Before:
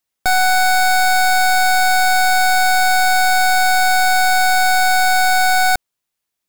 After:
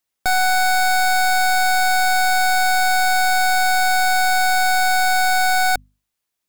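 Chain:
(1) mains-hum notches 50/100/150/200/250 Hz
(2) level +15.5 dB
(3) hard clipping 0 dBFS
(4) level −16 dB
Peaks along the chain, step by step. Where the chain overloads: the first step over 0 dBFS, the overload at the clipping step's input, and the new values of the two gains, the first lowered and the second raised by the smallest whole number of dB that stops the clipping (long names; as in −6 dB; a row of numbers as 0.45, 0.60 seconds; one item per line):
−12.0, +3.5, 0.0, −16.0 dBFS
step 2, 3.5 dB
step 2 +11.5 dB, step 4 −12 dB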